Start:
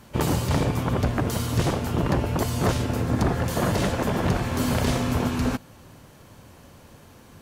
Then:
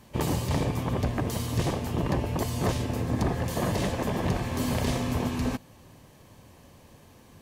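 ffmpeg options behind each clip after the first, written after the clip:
-af "bandreject=f=1.4k:w=5.8,volume=-4dB"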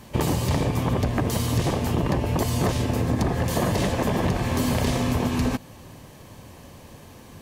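-af "acompressor=threshold=-27dB:ratio=6,volume=8dB"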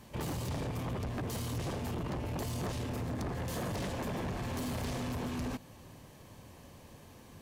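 -af "asoftclip=type=tanh:threshold=-24dB,volume=-8.5dB"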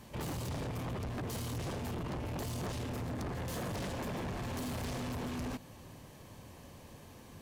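-af "asoftclip=type=tanh:threshold=-35.5dB,volume=1dB"

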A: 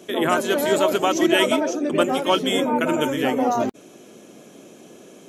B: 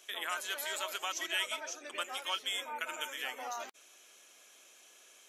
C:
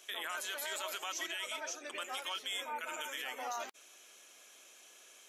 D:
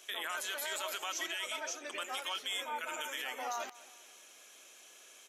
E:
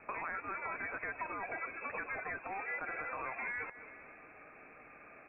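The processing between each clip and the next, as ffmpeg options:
-af "highpass=1.5k,acompressor=threshold=-35dB:ratio=1.5,volume=-5dB"
-af "alimiter=level_in=6.5dB:limit=-24dB:level=0:latency=1:release=15,volume=-6.5dB,volume=1dB"
-af "aecho=1:1:205|410|615:0.1|0.046|0.0212,volume=1.5dB"
-filter_complex "[0:a]lowpass=f=2.5k:t=q:w=0.5098,lowpass=f=2.5k:t=q:w=0.6013,lowpass=f=2.5k:t=q:w=0.9,lowpass=f=2.5k:t=q:w=2.563,afreqshift=-2900,acrossover=split=600|1600[a][b][c];[a]acompressor=threshold=-58dB:ratio=4[d];[b]acompressor=threshold=-50dB:ratio=4[e];[c]acompressor=threshold=-55dB:ratio=4[f];[d][e][f]amix=inputs=3:normalize=0,volume=8dB"

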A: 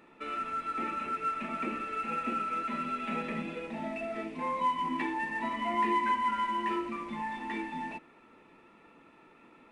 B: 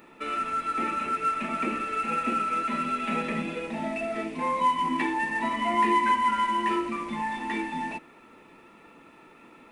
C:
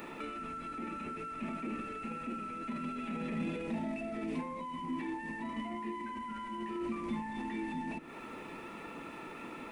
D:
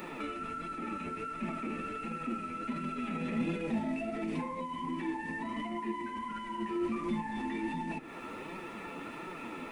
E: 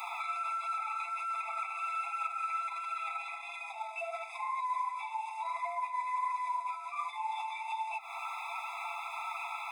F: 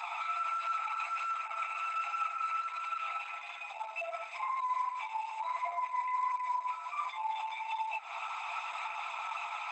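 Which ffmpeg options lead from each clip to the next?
-af "highshelf=f=7.7k:g=10.5,volume=5.5dB"
-filter_complex "[0:a]acompressor=threshold=-41dB:ratio=1.5,alimiter=level_in=9dB:limit=-24dB:level=0:latency=1:release=11,volume=-9dB,acrossover=split=340[a][b];[b]acompressor=threshold=-50dB:ratio=6[c];[a][c]amix=inputs=2:normalize=0,volume=7.5dB"
-af "flanger=delay=5.3:depth=6.4:regen=37:speed=1.4:shape=sinusoidal,volume=6.5dB"
-af "alimiter=level_in=7.5dB:limit=-24dB:level=0:latency=1:release=63,volume=-7.5dB,afftfilt=real='re*eq(mod(floor(b*sr/1024/670),2),1)':imag='im*eq(mod(floor(b*sr/1024/670),2),1)':win_size=1024:overlap=0.75,volume=8dB"
-af "volume=1dB" -ar 48000 -c:a libopus -b:a 12k

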